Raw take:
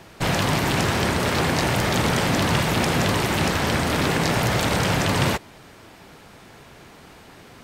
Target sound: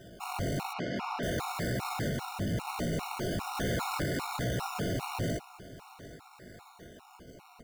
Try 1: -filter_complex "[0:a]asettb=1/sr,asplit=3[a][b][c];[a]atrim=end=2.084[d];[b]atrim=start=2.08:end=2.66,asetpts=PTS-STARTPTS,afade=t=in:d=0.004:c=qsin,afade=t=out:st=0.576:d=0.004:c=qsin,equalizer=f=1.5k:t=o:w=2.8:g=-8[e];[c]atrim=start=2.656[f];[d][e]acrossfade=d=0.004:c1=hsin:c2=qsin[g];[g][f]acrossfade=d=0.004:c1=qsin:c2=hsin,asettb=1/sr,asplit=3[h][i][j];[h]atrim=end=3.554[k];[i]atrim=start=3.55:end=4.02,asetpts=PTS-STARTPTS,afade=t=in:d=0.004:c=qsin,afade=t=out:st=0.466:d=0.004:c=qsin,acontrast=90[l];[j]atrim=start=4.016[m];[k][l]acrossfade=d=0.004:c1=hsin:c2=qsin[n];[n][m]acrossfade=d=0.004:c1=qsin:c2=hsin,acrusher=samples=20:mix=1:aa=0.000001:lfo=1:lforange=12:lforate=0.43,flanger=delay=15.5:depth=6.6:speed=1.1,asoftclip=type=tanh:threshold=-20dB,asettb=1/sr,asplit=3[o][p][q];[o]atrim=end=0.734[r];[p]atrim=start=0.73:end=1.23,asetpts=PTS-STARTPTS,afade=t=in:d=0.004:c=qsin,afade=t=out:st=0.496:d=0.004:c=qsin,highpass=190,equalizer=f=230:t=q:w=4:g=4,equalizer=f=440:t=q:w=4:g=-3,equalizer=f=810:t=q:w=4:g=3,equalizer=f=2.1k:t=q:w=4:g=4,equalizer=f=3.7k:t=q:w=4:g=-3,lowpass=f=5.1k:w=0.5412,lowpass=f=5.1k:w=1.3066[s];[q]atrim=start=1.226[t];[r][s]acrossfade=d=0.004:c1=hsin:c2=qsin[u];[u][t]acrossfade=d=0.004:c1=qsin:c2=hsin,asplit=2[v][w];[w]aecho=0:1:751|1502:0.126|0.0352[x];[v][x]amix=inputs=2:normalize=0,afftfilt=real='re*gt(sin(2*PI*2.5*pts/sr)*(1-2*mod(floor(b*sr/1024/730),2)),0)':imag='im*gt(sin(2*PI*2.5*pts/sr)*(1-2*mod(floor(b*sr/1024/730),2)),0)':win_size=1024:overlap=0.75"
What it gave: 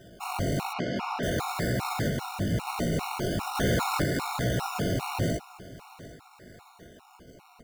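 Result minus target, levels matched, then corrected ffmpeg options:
soft clip: distortion -5 dB
-filter_complex "[0:a]asettb=1/sr,asplit=3[a][b][c];[a]atrim=end=2.084[d];[b]atrim=start=2.08:end=2.66,asetpts=PTS-STARTPTS,afade=t=in:d=0.004:c=qsin,afade=t=out:st=0.576:d=0.004:c=qsin,equalizer=f=1.5k:t=o:w=2.8:g=-8[e];[c]atrim=start=2.656[f];[d][e]acrossfade=d=0.004:c1=hsin:c2=qsin[g];[g][f]acrossfade=d=0.004:c1=qsin:c2=hsin,asettb=1/sr,asplit=3[h][i][j];[h]atrim=end=3.554[k];[i]atrim=start=3.55:end=4.02,asetpts=PTS-STARTPTS,afade=t=in:d=0.004:c=qsin,afade=t=out:st=0.466:d=0.004:c=qsin,acontrast=90[l];[j]atrim=start=4.016[m];[k][l]acrossfade=d=0.004:c1=hsin:c2=qsin[n];[n][m]acrossfade=d=0.004:c1=qsin:c2=hsin,acrusher=samples=20:mix=1:aa=0.000001:lfo=1:lforange=12:lforate=0.43,flanger=delay=15.5:depth=6.6:speed=1.1,asoftclip=type=tanh:threshold=-28dB,asettb=1/sr,asplit=3[o][p][q];[o]atrim=end=0.734[r];[p]atrim=start=0.73:end=1.23,asetpts=PTS-STARTPTS,afade=t=in:d=0.004:c=qsin,afade=t=out:st=0.496:d=0.004:c=qsin,highpass=190,equalizer=f=230:t=q:w=4:g=4,equalizer=f=440:t=q:w=4:g=-3,equalizer=f=810:t=q:w=4:g=3,equalizer=f=2.1k:t=q:w=4:g=4,equalizer=f=3.7k:t=q:w=4:g=-3,lowpass=f=5.1k:w=0.5412,lowpass=f=5.1k:w=1.3066[s];[q]atrim=start=1.226[t];[r][s]acrossfade=d=0.004:c1=hsin:c2=qsin[u];[u][t]acrossfade=d=0.004:c1=qsin:c2=hsin,asplit=2[v][w];[w]aecho=0:1:751|1502:0.126|0.0352[x];[v][x]amix=inputs=2:normalize=0,afftfilt=real='re*gt(sin(2*PI*2.5*pts/sr)*(1-2*mod(floor(b*sr/1024/730),2)),0)':imag='im*gt(sin(2*PI*2.5*pts/sr)*(1-2*mod(floor(b*sr/1024/730),2)),0)':win_size=1024:overlap=0.75"

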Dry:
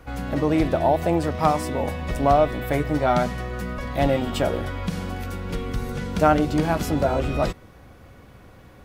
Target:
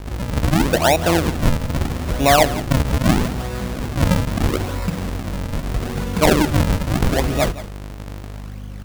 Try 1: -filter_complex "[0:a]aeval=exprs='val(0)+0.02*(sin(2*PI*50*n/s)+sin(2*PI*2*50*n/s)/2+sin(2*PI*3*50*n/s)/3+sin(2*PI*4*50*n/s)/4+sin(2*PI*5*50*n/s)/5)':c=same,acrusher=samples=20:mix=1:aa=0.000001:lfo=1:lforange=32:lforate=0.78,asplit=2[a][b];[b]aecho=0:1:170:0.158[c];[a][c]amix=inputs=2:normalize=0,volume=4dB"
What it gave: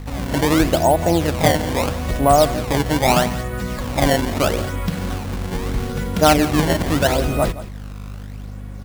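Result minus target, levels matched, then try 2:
decimation with a swept rate: distortion -10 dB
-filter_complex "[0:a]aeval=exprs='val(0)+0.02*(sin(2*PI*50*n/s)+sin(2*PI*2*50*n/s)/2+sin(2*PI*3*50*n/s)/3+sin(2*PI*4*50*n/s)/4+sin(2*PI*5*50*n/s)/5)':c=same,acrusher=samples=68:mix=1:aa=0.000001:lfo=1:lforange=109:lforate=0.78,asplit=2[a][b];[b]aecho=0:1:170:0.158[c];[a][c]amix=inputs=2:normalize=0,volume=4dB"

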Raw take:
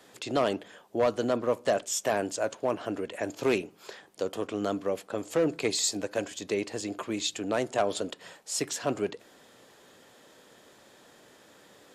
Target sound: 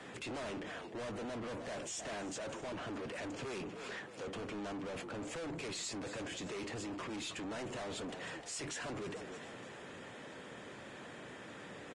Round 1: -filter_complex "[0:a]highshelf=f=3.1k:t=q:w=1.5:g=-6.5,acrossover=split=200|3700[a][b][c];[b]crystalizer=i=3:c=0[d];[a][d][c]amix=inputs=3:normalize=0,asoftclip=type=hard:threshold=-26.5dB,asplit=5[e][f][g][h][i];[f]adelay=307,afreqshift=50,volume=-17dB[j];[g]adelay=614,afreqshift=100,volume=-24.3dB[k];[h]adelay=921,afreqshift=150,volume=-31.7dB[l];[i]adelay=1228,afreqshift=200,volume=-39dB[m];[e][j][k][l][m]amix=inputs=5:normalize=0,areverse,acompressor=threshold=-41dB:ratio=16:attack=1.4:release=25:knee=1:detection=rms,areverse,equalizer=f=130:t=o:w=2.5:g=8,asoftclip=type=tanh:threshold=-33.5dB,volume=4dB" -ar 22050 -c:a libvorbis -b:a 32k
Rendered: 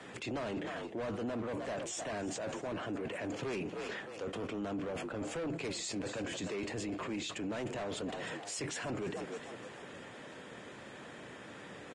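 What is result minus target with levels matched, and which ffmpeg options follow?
soft clip: distortion -12 dB; hard clip: distortion -5 dB
-filter_complex "[0:a]highshelf=f=3.1k:t=q:w=1.5:g=-6.5,acrossover=split=200|3700[a][b][c];[b]crystalizer=i=3:c=0[d];[a][d][c]amix=inputs=3:normalize=0,asoftclip=type=hard:threshold=-35dB,asplit=5[e][f][g][h][i];[f]adelay=307,afreqshift=50,volume=-17dB[j];[g]adelay=614,afreqshift=100,volume=-24.3dB[k];[h]adelay=921,afreqshift=150,volume=-31.7dB[l];[i]adelay=1228,afreqshift=200,volume=-39dB[m];[e][j][k][l][m]amix=inputs=5:normalize=0,areverse,acompressor=threshold=-41dB:ratio=16:attack=1.4:release=25:knee=1:detection=rms,areverse,equalizer=f=130:t=o:w=2.5:g=8,asoftclip=type=tanh:threshold=-44dB,volume=4dB" -ar 22050 -c:a libvorbis -b:a 32k

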